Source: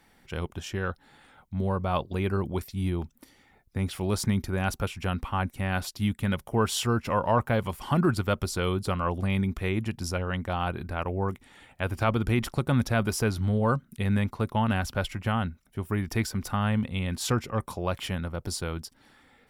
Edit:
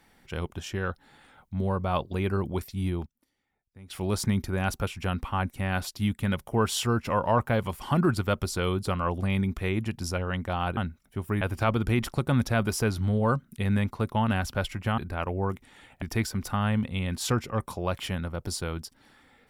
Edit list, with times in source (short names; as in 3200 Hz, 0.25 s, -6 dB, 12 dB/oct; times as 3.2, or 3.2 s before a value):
2.63–4.33 dip -19.5 dB, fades 0.43 s logarithmic
10.77–11.81 swap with 15.38–16.02